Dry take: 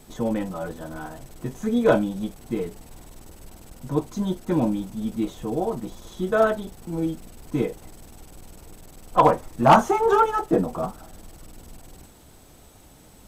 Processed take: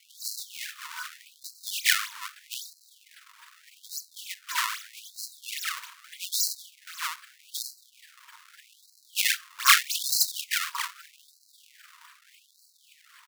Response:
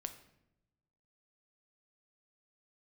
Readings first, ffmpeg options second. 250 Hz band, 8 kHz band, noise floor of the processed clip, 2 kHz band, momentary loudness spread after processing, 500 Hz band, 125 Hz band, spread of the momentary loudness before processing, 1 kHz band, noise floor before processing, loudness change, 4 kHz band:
under -40 dB, +14.5 dB, -62 dBFS, +4.5 dB, 16 LU, under -40 dB, under -40 dB, 17 LU, -12.5 dB, -50 dBFS, -4.5 dB, +13.5 dB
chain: -af "aecho=1:1:7.3:0.52,acrusher=samples=32:mix=1:aa=0.000001:lfo=1:lforange=51.2:lforate=3.7,afftfilt=real='re*gte(b*sr/1024,890*pow(4000/890,0.5+0.5*sin(2*PI*0.81*pts/sr)))':imag='im*gte(b*sr/1024,890*pow(4000/890,0.5+0.5*sin(2*PI*0.81*pts/sr)))':win_size=1024:overlap=0.75,volume=3dB"

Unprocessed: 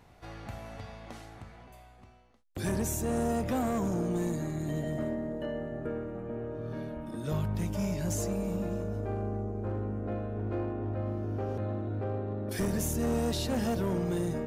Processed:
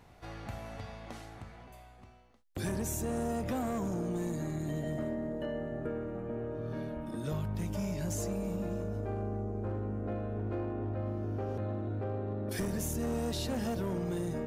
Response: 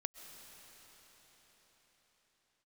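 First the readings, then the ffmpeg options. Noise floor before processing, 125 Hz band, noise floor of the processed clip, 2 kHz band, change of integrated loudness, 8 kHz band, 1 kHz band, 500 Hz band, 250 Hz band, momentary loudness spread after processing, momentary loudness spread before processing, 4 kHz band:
-56 dBFS, -2.5 dB, -56 dBFS, -2.5 dB, -3.0 dB, -3.0 dB, -3.0 dB, -2.5 dB, -3.0 dB, 11 LU, 13 LU, -3.0 dB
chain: -af "acompressor=threshold=-31dB:ratio=6"

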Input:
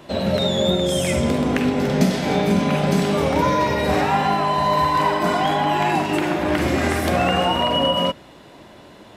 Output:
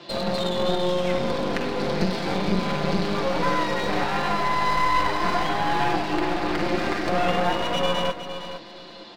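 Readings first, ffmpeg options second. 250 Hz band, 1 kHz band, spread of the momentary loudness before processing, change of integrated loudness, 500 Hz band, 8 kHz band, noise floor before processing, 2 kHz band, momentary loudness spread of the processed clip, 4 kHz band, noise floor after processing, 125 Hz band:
-6.5 dB, -4.0 dB, 2 LU, -5.0 dB, -4.5 dB, -8.5 dB, -45 dBFS, -2.5 dB, 4 LU, -5.5 dB, -42 dBFS, -7.5 dB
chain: -filter_complex "[0:a]highpass=200,aecho=1:1:5.8:0.7,acrossover=split=2200[a][b];[b]acompressor=threshold=-41dB:ratio=6[c];[a][c]amix=inputs=2:normalize=0,lowpass=f=4.5k:t=q:w=4.6,aeval=exprs='clip(val(0),-1,0.0316)':c=same,asplit=2[d][e];[e]aecho=0:1:461|922|1383:0.299|0.0687|0.0158[f];[d][f]amix=inputs=2:normalize=0,volume=-2.5dB"

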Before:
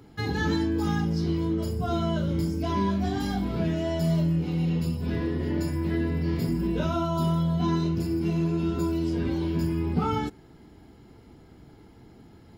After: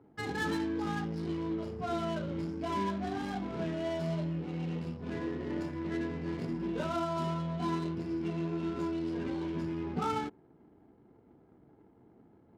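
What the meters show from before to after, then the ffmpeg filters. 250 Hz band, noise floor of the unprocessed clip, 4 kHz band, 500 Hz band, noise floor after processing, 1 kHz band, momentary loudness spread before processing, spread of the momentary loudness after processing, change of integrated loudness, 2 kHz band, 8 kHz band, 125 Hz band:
-8.0 dB, -52 dBFS, -7.5 dB, -5.5 dB, -62 dBFS, -4.0 dB, 3 LU, 4 LU, -8.0 dB, -4.0 dB, n/a, -12.0 dB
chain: -af "adynamicsmooth=sensitivity=8:basefreq=640,highpass=f=370:p=1,volume=-3dB"

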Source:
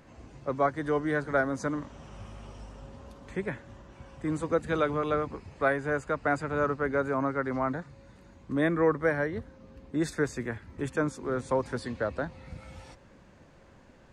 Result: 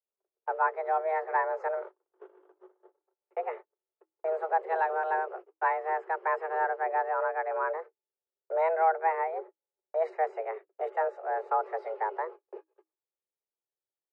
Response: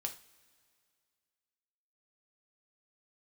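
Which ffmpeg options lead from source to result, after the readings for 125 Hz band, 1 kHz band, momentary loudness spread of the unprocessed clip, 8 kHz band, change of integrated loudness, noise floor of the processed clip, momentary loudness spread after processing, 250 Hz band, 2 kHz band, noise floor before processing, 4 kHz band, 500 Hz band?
under -40 dB, +6.0 dB, 19 LU, under -30 dB, -0.5 dB, under -85 dBFS, 11 LU, under -20 dB, -3.0 dB, -56 dBFS, under -15 dB, -1.5 dB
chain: -af "lowpass=1.1k,agate=range=-49dB:threshold=-41dB:ratio=16:detection=peak,afreqshift=320"

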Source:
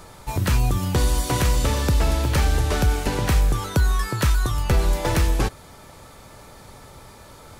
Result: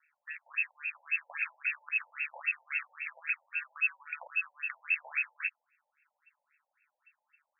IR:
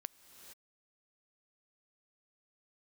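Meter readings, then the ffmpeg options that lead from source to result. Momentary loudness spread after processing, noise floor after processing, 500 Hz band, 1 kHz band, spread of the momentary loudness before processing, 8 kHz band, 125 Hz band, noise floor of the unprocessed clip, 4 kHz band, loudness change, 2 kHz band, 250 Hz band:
7 LU, under -85 dBFS, -33.0 dB, -21.5 dB, 2 LU, under -40 dB, under -40 dB, -45 dBFS, under -35 dB, -11.5 dB, -0.5 dB, under -40 dB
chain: -af "aeval=exprs='val(0)*sin(2*PI*76*n/s)':c=same,afwtdn=0.0282,equalizer=f=630:w=7.5:g=-6,lowpass=f=2.3k:t=q:w=0.5098,lowpass=f=2.3k:t=q:w=0.6013,lowpass=f=2.3k:t=q:w=0.9,lowpass=f=2.3k:t=q:w=2.563,afreqshift=-2700,afftfilt=real='re*between(b*sr/1024,660*pow(2000/660,0.5+0.5*sin(2*PI*3.7*pts/sr))/1.41,660*pow(2000/660,0.5+0.5*sin(2*PI*3.7*pts/sr))*1.41)':imag='im*between(b*sr/1024,660*pow(2000/660,0.5+0.5*sin(2*PI*3.7*pts/sr))/1.41,660*pow(2000/660,0.5+0.5*sin(2*PI*3.7*pts/sr))*1.41)':win_size=1024:overlap=0.75,volume=-6dB"

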